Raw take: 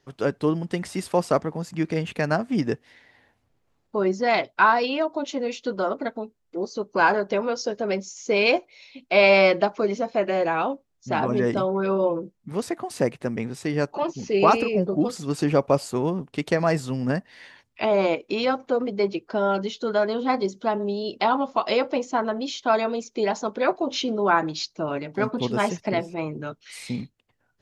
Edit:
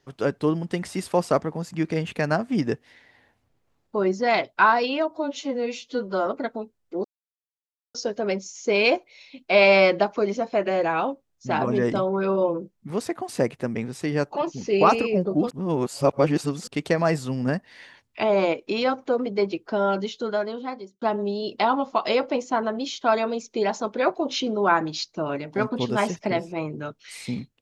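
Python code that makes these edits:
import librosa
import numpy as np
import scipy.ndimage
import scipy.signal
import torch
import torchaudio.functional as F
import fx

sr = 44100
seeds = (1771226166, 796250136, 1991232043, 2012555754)

y = fx.edit(x, sr, fx.stretch_span(start_s=5.11, length_s=0.77, factor=1.5),
    fx.silence(start_s=6.66, length_s=0.9),
    fx.reverse_span(start_s=15.12, length_s=1.17),
    fx.fade_out_span(start_s=19.68, length_s=0.95), tone=tone)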